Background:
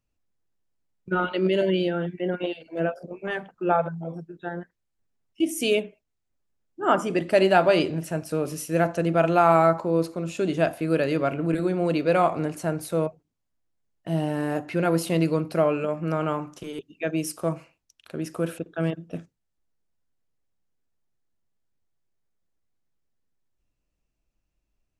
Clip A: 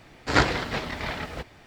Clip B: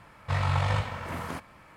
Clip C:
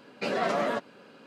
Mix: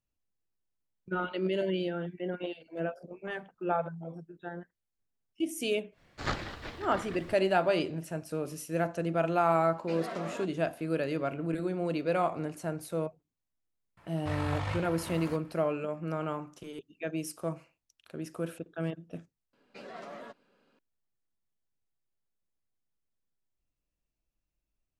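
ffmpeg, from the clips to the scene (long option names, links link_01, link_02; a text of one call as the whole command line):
ffmpeg -i bed.wav -i cue0.wav -i cue1.wav -i cue2.wav -filter_complex "[3:a]asplit=2[link_01][link_02];[0:a]volume=-8dB[link_03];[1:a]afreqshift=-160,atrim=end=1.66,asetpts=PTS-STARTPTS,volume=-12.5dB,afade=type=in:duration=0.1,afade=type=out:start_time=1.56:duration=0.1,adelay=5910[link_04];[link_01]atrim=end=1.26,asetpts=PTS-STARTPTS,volume=-11.5dB,afade=type=in:duration=0.004:curve=hsin,afade=type=out:start_time=1.256:duration=0.004:curve=hsin,adelay=9660[link_05];[2:a]atrim=end=1.76,asetpts=PTS-STARTPTS,volume=-7.5dB,afade=type=in:duration=0.004:curve=hsin,afade=type=out:start_time=1.756:duration=0.004:curve=hsin,adelay=13970[link_06];[link_02]atrim=end=1.26,asetpts=PTS-STARTPTS,volume=-17dB,afade=type=in:duration=0.004:curve=hsin,afade=type=out:start_time=1.256:duration=0.004:curve=hsin,adelay=19530[link_07];[link_03][link_04][link_05][link_06][link_07]amix=inputs=5:normalize=0" out.wav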